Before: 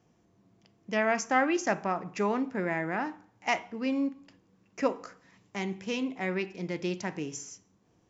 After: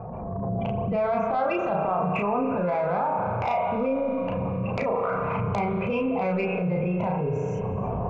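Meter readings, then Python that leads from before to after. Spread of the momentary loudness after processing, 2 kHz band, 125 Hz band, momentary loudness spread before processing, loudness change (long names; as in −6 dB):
3 LU, −2.0 dB, +13.5 dB, 13 LU, +5.0 dB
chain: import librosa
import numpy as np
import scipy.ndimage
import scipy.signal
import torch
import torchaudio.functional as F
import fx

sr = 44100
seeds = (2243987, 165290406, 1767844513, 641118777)

p1 = fx.recorder_agc(x, sr, target_db=-16.5, rise_db_per_s=70.0, max_gain_db=30)
p2 = fx.spec_gate(p1, sr, threshold_db=-20, keep='strong')
p3 = scipy.signal.sosfilt(scipy.signal.ellip(4, 1.0, 50, 2500.0, 'lowpass', fs=sr, output='sos'), p2)
p4 = fx.cheby_harmonics(p3, sr, harmonics=(5,), levels_db=(-17,), full_scale_db=-4.5)
p5 = fx.fixed_phaser(p4, sr, hz=760.0, stages=4)
p6 = fx.transient(p5, sr, attack_db=-11, sustain_db=6)
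p7 = fx.doubler(p6, sr, ms=34.0, db=-2)
p8 = p7 + fx.echo_single(p7, sr, ms=321, db=-23.5, dry=0)
p9 = fx.rev_spring(p8, sr, rt60_s=2.9, pass_ms=(32,), chirp_ms=75, drr_db=7.0)
p10 = fx.env_flatten(p9, sr, amount_pct=70)
y = F.gain(torch.from_numpy(p10), -3.5).numpy()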